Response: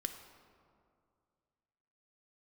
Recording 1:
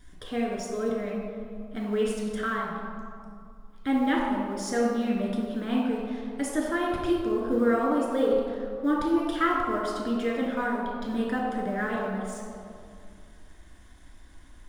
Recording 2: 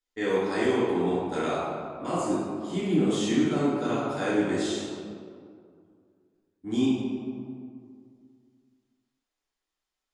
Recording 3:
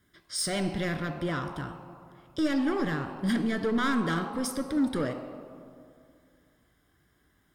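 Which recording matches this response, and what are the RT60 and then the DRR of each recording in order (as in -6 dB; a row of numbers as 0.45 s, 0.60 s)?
3; 2.3 s, 2.3 s, 2.3 s; -3.5 dB, -10.0 dB, 6.5 dB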